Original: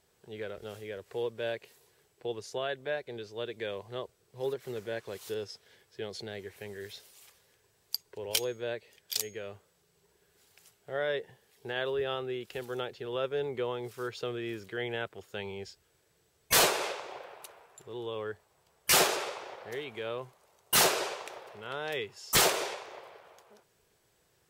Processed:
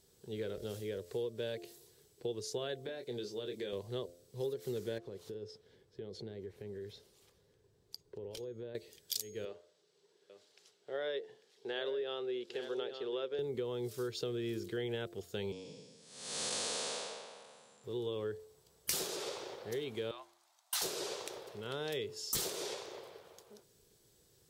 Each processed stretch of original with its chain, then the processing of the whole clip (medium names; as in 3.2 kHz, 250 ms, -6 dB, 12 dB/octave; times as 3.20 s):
2.86–3.73 s: high-pass 130 Hz + compression 4:1, threshold -38 dBFS + doubling 24 ms -7 dB
4.98–8.75 s: low-pass 1.1 kHz 6 dB/octave + compression 4:1, threshold -44 dBFS
9.45–13.39 s: band-pass 390–4400 Hz + delay 846 ms -12 dB
15.52–17.84 s: spectral blur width 471 ms + frequency shift +76 Hz + Chebyshev low-pass 9.9 kHz, order 6
20.11–20.82 s: steep high-pass 650 Hz 96 dB/octave + treble shelf 7.3 kHz -11.5 dB + band-stop 2.9 kHz, Q 27
whole clip: high-order bell 1.3 kHz -10 dB 2.5 oct; de-hum 86.65 Hz, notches 8; compression 8:1, threshold -38 dBFS; trim +4 dB